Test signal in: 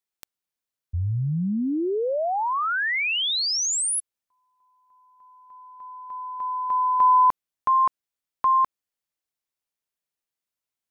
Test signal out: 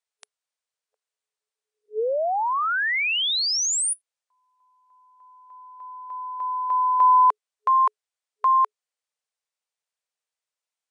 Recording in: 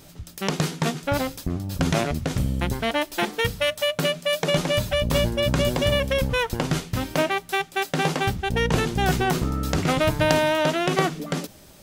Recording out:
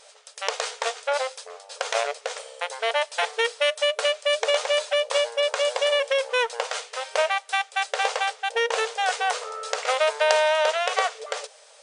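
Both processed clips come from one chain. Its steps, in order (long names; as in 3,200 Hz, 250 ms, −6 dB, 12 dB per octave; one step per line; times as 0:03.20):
brick-wall band-pass 430–9,800 Hz
level +1 dB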